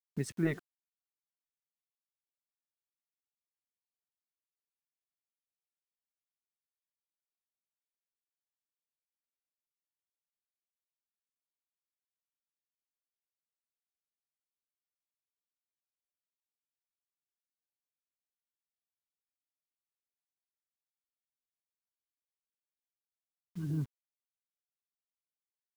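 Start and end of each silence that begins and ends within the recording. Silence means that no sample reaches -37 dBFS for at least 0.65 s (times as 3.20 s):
0.58–23.57 s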